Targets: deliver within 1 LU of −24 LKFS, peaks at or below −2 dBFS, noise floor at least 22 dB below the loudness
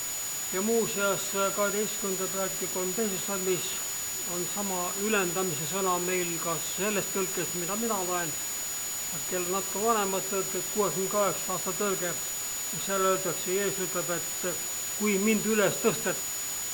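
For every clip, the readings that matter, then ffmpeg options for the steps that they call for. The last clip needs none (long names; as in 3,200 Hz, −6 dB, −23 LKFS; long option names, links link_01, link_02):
interfering tone 6,900 Hz; level of the tone −33 dBFS; background noise floor −34 dBFS; target noise floor −50 dBFS; integrated loudness −28.0 LKFS; sample peak −10.5 dBFS; target loudness −24.0 LKFS
→ -af "bandreject=frequency=6900:width=30"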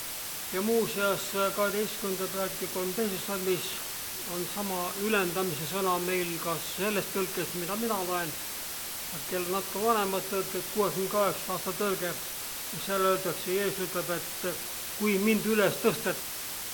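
interfering tone none found; background noise floor −37 dBFS; target noise floor −52 dBFS
→ -af "afftdn=noise_reduction=15:noise_floor=-37"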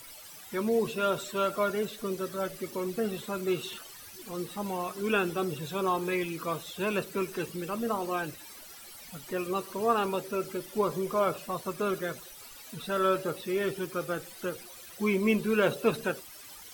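background noise floor −48 dBFS; target noise floor −53 dBFS
→ -af "afftdn=noise_reduction=6:noise_floor=-48"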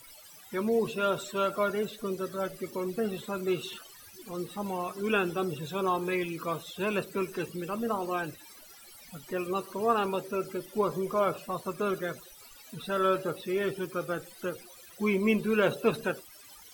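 background noise floor −52 dBFS; target noise floor −54 dBFS
→ -af "afftdn=noise_reduction=6:noise_floor=-52"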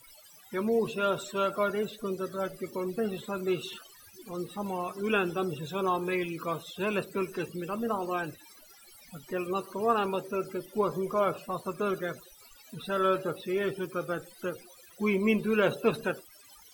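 background noise floor −55 dBFS; integrated loudness −31.5 LKFS; sample peak −11.5 dBFS; target loudness −24.0 LKFS
→ -af "volume=7.5dB"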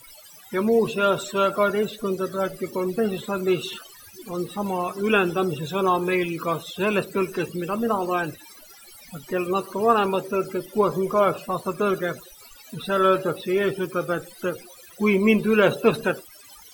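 integrated loudness −24.0 LKFS; sample peak −4.0 dBFS; background noise floor −48 dBFS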